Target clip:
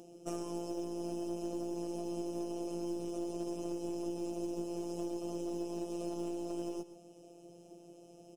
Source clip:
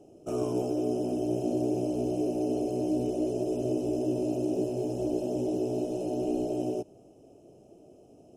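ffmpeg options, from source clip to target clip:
ffmpeg -i in.wav -filter_complex "[0:a]highpass=49,equalizer=frequency=6000:width_type=o:width=2.8:gain=7,acompressor=threshold=-34dB:ratio=6,aeval=exprs='0.15*(cos(1*acos(clip(val(0)/0.15,-1,1)))-cos(1*PI/2))+0.00299*(cos(4*acos(clip(val(0)/0.15,-1,1)))-cos(4*PI/2))+0.0106*(cos(5*acos(clip(val(0)/0.15,-1,1)))-cos(5*PI/2))+0.00376*(cos(6*acos(clip(val(0)/0.15,-1,1)))-cos(6*PI/2))+0.0106*(cos(8*acos(clip(val(0)/0.15,-1,1)))-cos(8*PI/2))':channel_layout=same,afftfilt=real='hypot(re,im)*cos(PI*b)':imag='0':win_size=1024:overlap=0.75,acompressor=mode=upward:threshold=-50dB:ratio=2.5,acrusher=bits=9:mode=log:mix=0:aa=0.000001,asplit=2[link_01][link_02];[link_02]aecho=0:1:130:0.178[link_03];[link_01][link_03]amix=inputs=2:normalize=0,volume=-1dB" out.wav

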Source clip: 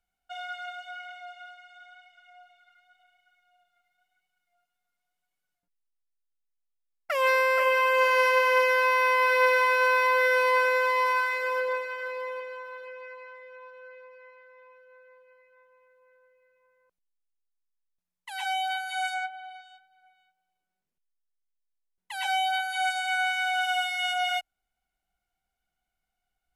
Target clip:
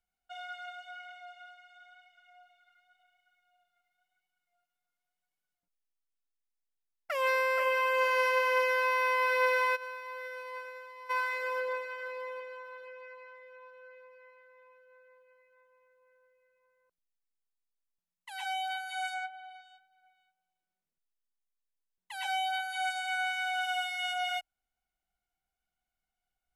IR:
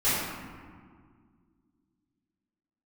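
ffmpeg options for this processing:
-filter_complex "[0:a]asplit=3[link_01][link_02][link_03];[link_01]afade=type=out:start_time=9.75:duration=0.02[link_04];[link_02]agate=range=-33dB:threshold=-12dB:ratio=3:detection=peak,afade=type=in:start_time=9.75:duration=0.02,afade=type=out:start_time=11.09:duration=0.02[link_05];[link_03]afade=type=in:start_time=11.09:duration=0.02[link_06];[link_04][link_05][link_06]amix=inputs=3:normalize=0,volume=-5.5dB"

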